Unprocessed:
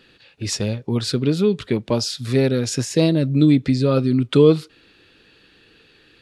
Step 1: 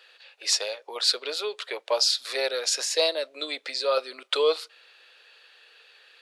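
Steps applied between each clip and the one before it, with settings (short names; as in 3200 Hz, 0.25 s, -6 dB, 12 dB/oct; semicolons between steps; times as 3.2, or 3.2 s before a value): steep high-pass 530 Hz 36 dB/oct; dynamic EQ 4300 Hz, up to +6 dB, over -42 dBFS, Q 2.5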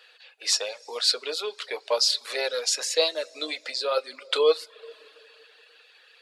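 two-slope reverb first 0.2 s, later 2.7 s, from -18 dB, DRR 7.5 dB; reverb removal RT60 0.58 s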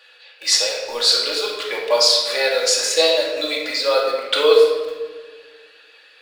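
in parallel at -10.5 dB: requantised 6-bit, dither none; on the sum: shoebox room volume 1200 m³, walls mixed, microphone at 2.4 m; gain +2 dB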